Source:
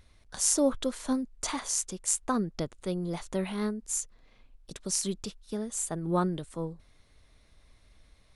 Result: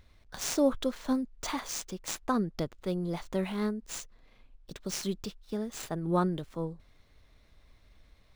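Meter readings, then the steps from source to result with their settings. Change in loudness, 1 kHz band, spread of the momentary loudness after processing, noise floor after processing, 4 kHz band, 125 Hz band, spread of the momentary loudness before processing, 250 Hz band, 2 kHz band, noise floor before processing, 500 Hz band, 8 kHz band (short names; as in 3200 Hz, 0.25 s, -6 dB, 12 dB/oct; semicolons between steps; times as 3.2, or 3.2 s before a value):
-2.5 dB, 0.0 dB, 12 LU, -62 dBFS, -1.5 dB, 0.0 dB, 12 LU, 0.0 dB, +1.0 dB, -62 dBFS, 0.0 dB, -9.5 dB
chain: median filter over 5 samples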